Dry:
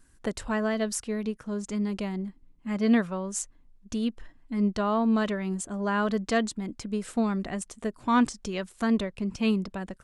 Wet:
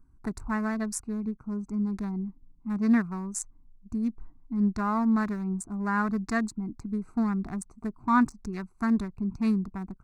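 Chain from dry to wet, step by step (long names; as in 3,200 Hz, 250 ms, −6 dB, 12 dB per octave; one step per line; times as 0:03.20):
adaptive Wiener filter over 25 samples
phaser with its sweep stopped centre 1,300 Hz, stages 4
level +2.5 dB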